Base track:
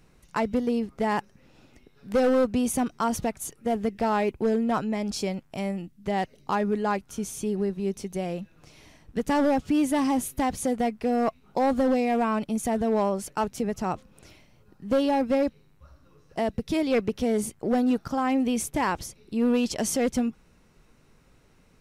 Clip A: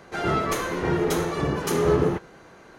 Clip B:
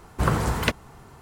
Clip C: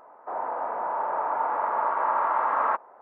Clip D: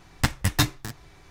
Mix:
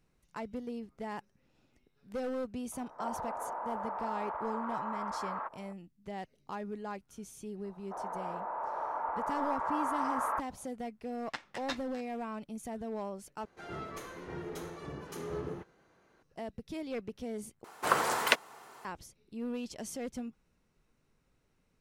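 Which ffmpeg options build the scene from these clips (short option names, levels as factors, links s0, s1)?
-filter_complex "[3:a]asplit=2[s0][s1];[0:a]volume=0.188[s2];[s0]acompressor=threshold=0.0251:ratio=6:attack=3.2:release=140:knee=1:detection=peak[s3];[4:a]highpass=500,lowpass=4200[s4];[2:a]highpass=540[s5];[s2]asplit=3[s6][s7][s8];[s6]atrim=end=13.454[s9];[1:a]atrim=end=2.78,asetpts=PTS-STARTPTS,volume=0.126[s10];[s7]atrim=start=16.226:end=17.644[s11];[s5]atrim=end=1.21,asetpts=PTS-STARTPTS,volume=0.944[s12];[s8]atrim=start=18.846[s13];[s3]atrim=end=3.01,asetpts=PTS-STARTPTS,volume=0.708,afade=t=in:d=0.004:c=hsin,afade=t=out:st=3.006:d=0.004:c=hsin,adelay=2720[s14];[s1]atrim=end=3.01,asetpts=PTS-STARTPTS,volume=0.355,afade=t=in:d=0.004:c=hsin,afade=t=out:st=3.006:d=0.004:c=hsin,adelay=7640[s15];[s4]atrim=end=1.3,asetpts=PTS-STARTPTS,volume=0.237,afade=t=in:d=0.004:c=hsin,afade=t=out:st=1.296:d=0.004:c=hsin,adelay=11100[s16];[s9][s10]acrossfade=d=0.004:c1=hsin:c2=hsin[s17];[s17][s11]acrossfade=d=0.004:c1=hsin:c2=hsin[s18];[s18][s12]acrossfade=d=0.004:c1=hsin:c2=hsin[s19];[s19][s13]acrossfade=d=0.004:c1=hsin:c2=hsin[s20];[s20][s14][s15][s16]amix=inputs=4:normalize=0"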